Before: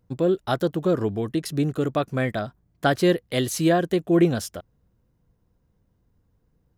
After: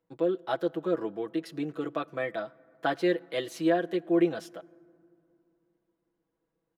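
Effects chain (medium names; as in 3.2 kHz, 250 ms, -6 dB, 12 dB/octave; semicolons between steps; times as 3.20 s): three-band isolator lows -21 dB, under 250 Hz, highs -13 dB, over 3.9 kHz; comb 6.1 ms, depth 78%; on a send: reverberation RT60 2.6 s, pre-delay 5 ms, DRR 23 dB; on the sum: trim -7.5 dB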